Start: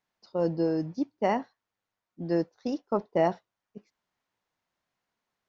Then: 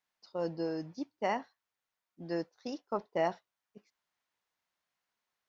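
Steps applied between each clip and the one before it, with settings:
tilt shelving filter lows −5 dB, about 660 Hz
level −6 dB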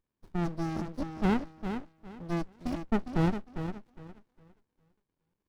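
low-shelf EQ 71 Hz −11 dB
tape delay 407 ms, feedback 29%, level −5 dB, low-pass 2,800 Hz
windowed peak hold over 65 samples
level +6 dB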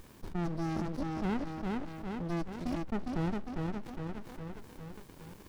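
envelope flattener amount 70%
level −8 dB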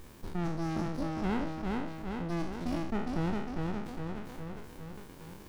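peak hold with a decay on every bin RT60 0.68 s

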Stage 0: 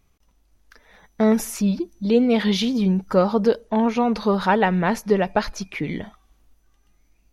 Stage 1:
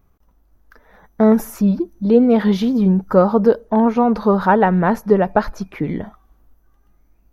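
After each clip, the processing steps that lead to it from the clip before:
flat-topped bell 4,600 Hz −12.5 dB 2.6 octaves
level +5 dB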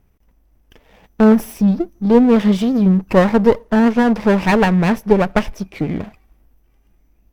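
lower of the sound and its delayed copy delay 0.37 ms
level +1.5 dB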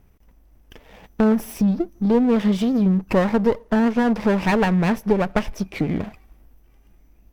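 downward compressor 2 to 1, threshold −25 dBFS, peak gain reduction 10.5 dB
level +3 dB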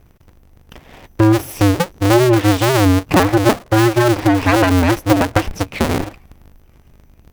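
sub-harmonics by changed cycles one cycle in 2, inverted
level +5.5 dB

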